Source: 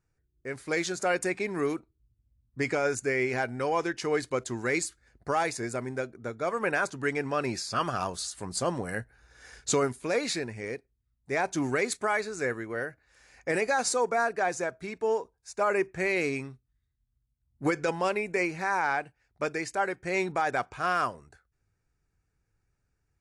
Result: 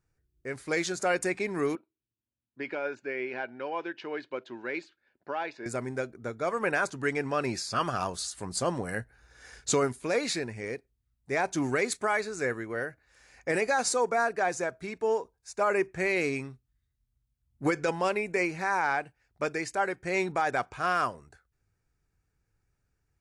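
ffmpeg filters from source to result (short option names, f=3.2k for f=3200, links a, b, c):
-filter_complex "[0:a]asettb=1/sr,asplit=3[a][b][c];[a]atrim=end=1.754[d];[b]atrim=start=1.75:end=5.66,asetpts=PTS-STARTPTS,afade=t=in:d=0.004:c=qsin,afade=t=out:st=3.906:d=0.004:c=qsin,highpass=390,equalizer=f=460:t=q:w=4:g=-7,equalizer=f=730:t=q:w=4:g=-7,equalizer=f=1.2k:t=q:w=4:g=-10,equalizer=f=2k:t=q:w=4:g=-9,lowpass=f=3.2k:w=0.5412,lowpass=f=3.2k:w=1.3066[e];[c]atrim=start=5.656[f];[d][e]acrossfade=d=0.004:c1=hsin:c2=qsin[g];[g][f]acrossfade=d=0.004:c1=qsin:c2=hsin"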